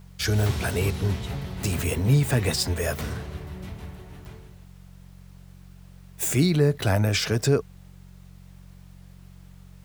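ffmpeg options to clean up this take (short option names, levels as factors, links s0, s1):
-af "adeclick=t=4,bandreject=f=45.6:t=h:w=4,bandreject=f=91.2:t=h:w=4,bandreject=f=136.8:t=h:w=4,bandreject=f=182.4:t=h:w=4,agate=range=0.0891:threshold=0.0112"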